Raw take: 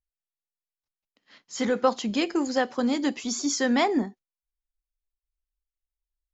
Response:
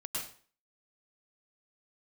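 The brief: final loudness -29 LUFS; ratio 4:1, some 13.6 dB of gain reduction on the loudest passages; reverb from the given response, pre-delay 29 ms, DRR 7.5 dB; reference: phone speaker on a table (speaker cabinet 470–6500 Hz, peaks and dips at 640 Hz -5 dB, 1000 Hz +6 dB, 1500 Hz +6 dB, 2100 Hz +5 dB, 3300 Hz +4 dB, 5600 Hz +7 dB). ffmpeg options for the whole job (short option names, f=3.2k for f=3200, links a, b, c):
-filter_complex "[0:a]acompressor=threshold=-33dB:ratio=4,asplit=2[a][b];[1:a]atrim=start_sample=2205,adelay=29[c];[b][c]afir=irnorm=-1:irlink=0,volume=-9.5dB[d];[a][d]amix=inputs=2:normalize=0,highpass=f=470:w=0.5412,highpass=f=470:w=1.3066,equalizer=f=640:t=q:w=4:g=-5,equalizer=f=1k:t=q:w=4:g=6,equalizer=f=1.5k:t=q:w=4:g=6,equalizer=f=2.1k:t=q:w=4:g=5,equalizer=f=3.3k:t=q:w=4:g=4,equalizer=f=5.6k:t=q:w=4:g=7,lowpass=f=6.5k:w=0.5412,lowpass=f=6.5k:w=1.3066,volume=6.5dB"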